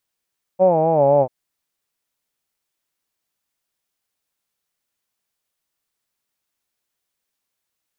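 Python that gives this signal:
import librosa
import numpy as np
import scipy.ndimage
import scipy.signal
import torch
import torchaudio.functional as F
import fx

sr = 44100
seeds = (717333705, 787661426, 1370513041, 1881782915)

y = fx.vowel(sr, seeds[0], length_s=0.69, word='hawed', hz=183.0, glide_st=-6.0, vibrato_hz=3.9, vibrato_st=0.9)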